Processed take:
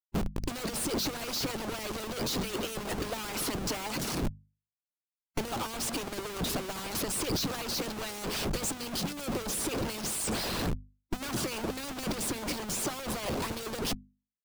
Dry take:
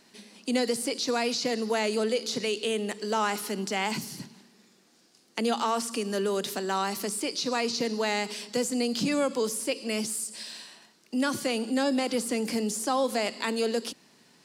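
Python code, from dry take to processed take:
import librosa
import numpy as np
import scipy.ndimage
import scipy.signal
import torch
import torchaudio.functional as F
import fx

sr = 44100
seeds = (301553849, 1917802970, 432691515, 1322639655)

y = fx.schmitt(x, sr, flips_db=-41.5)
y = fx.low_shelf(y, sr, hz=450.0, db=6.5)
y = fx.hpss(y, sr, part='harmonic', gain_db=-15)
y = fx.peak_eq(y, sr, hz=1900.0, db=-3.0, octaves=0.44)
y = fx.hum_notches(y, sr, base_hz=50, count=5)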